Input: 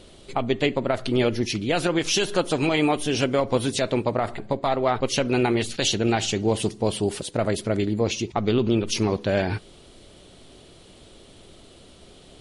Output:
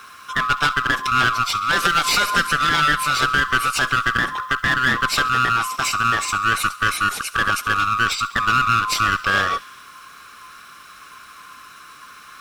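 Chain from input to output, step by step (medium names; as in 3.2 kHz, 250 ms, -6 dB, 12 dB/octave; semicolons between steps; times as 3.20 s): split-band scrambler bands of 1 kHz; 5.28–6.52 s: graphic EQ 500/1000/2000/4000 Hz -7/+3/-3/-8 dB; one-sided clip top -26.5 dBFS; bit crusher 10-bit; on a send: feedback echo behind a high-pass 68 ms, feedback 71%, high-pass 2.4 kHz, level -18 dB; 1.85–2.47 s: on the sum: three bands compressed up and down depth 70%; trim +6 dB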